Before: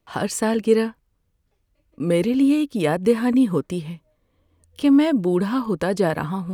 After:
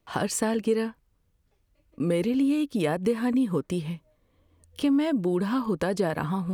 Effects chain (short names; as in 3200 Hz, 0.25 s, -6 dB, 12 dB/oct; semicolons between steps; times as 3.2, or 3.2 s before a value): compressor 2.5:1, threshold -24 dBFS, peak gain reduction 9 dB